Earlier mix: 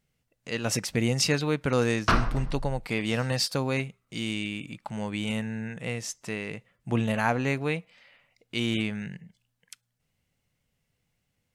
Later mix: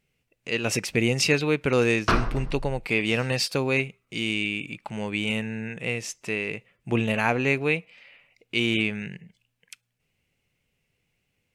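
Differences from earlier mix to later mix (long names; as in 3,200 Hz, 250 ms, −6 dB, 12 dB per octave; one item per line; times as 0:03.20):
speech: add parametric band 2,500 Hz +10 dB 0.53 octaves
master: add parametric band 390 Hz +6.5 dB 0.65 octaves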